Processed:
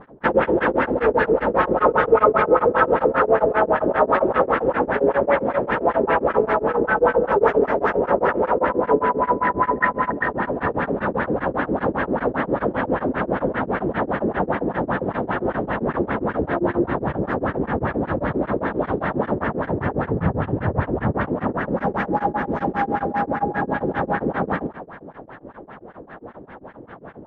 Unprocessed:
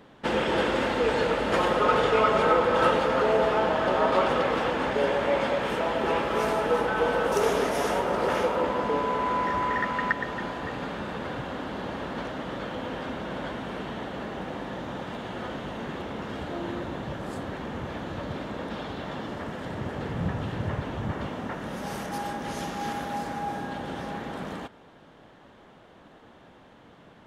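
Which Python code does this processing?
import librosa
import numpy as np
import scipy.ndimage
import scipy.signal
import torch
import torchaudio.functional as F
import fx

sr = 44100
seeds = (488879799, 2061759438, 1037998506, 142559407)

p1 = fx.rider(x, sr, range_db=10, speed_s=0.5)
p2 = x + (p1 * 10.0 ** (2.0 / 20.0))
p3 = fx.vibrato(p2, sr, rate_hz=0.73, depth_cents=17.0)
p4 = fx.echo_split(p3, sr, split_hz=650.0, low_ms=117, high_ms=165, feedback_pct=52, wet_db=-14)
p5 = fx.filter_lfo_lowpass(p4, sr, shape='sine', hz=5.1, low_hz=360.0, high_hz=1900.0, q=2.7)
y = p5 * np.abs(np.cos(np.pi * 7.5 * np.arange(len(p5)) / sr))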